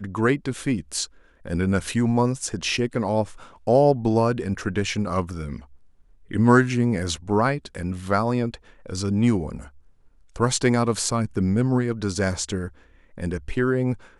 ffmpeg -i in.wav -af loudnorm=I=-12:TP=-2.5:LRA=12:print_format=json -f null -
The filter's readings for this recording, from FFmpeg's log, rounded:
"input_i" : "-23.7",
"input_tp" : "-3.3",
"input_lra" : "2.5",
"input_thresh" : "-34.3",